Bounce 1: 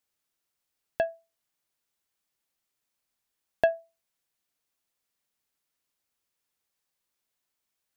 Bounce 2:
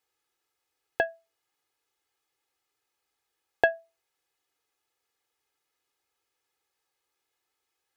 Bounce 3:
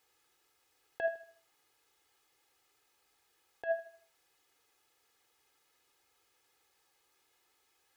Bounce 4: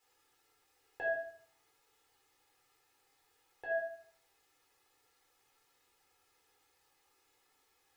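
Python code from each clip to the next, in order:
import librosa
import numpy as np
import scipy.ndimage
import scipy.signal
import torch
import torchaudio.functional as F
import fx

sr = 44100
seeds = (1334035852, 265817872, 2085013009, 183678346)

y1 = fx.highpass(x, sr, hz=820.0, slope=6)
y1 = fx.tilt_eq(y1, sr, slope=-3.0)
y1 = y1 + 0.83 * np.pad(y1, (int(2.4 * sr / 1000.0), 0))[:len(y1)]
y1 = y1 * 10.0 ** (6.5 / 20.0)
y2 = fx.over_compress(y1, sr, threshold_db=-34.0, ratio=-1.0)
y2 = fx.echo_feedback(y2, sr, ms=78, feedback_pct=37, wet_db=-12)
y3 = fx.room_shoebox(y2, sr, seeds[0], volume_m3=390.0, walls='furnished', distance_m=4.3)
y3 = y3 * 10.0 ** (-6.0 / 20.0)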